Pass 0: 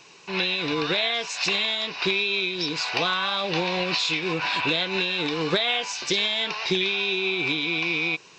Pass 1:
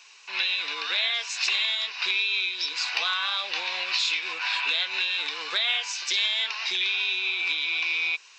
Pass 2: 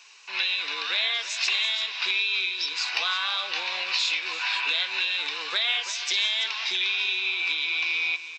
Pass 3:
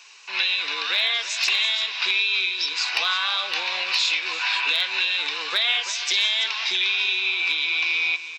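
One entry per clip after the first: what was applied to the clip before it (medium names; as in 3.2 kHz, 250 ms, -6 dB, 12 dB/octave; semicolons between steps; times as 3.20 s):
high-pass 1.3 kHz 12 dB/octave
delay 333 ms -12.5 dB
overload inside the chain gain 14.5 dB; trim +3.5 dB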